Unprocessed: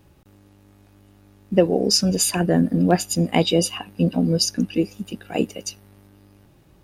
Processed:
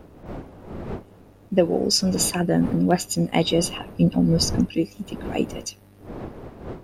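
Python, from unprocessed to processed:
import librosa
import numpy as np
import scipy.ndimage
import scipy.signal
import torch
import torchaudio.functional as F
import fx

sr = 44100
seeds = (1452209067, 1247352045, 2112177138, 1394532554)

y = fx.dmg_wind(x, sr, seeds[0], corner_hz=420.0, level_db=-35.0)
y = fx.low_shelf(y, sr, hz=140.0, db=9.5, at=(3.96, 4.67))
y = F.gain(torch.from_numpy(y), -2.0).numpy()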